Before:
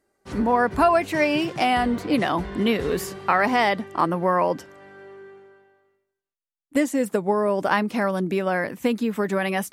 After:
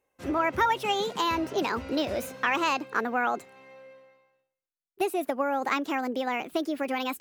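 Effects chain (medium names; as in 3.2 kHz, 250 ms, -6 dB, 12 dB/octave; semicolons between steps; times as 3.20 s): speed mistake 33 rpm record played at 45 rpm; trim -6 dB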